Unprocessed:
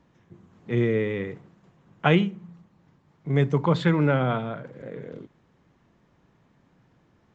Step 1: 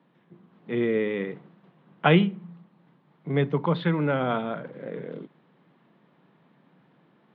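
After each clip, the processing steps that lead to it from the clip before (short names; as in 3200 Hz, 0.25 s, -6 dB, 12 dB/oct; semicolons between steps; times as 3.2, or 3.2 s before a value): elliptic band-pass 160–3700 Hz, stop band 40 dB; vocal rider within 3 dB 0.5 s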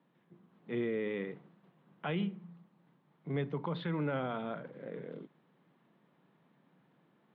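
limiter -18 dBFS, peak gain reduction 11 dB; gain -8 dB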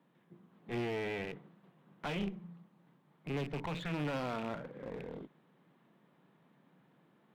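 rattling part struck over -43 dBFS, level -36 dBFS; one-sided clip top -45 dBFS, bottom -28 dBFS; gain +1.5 dB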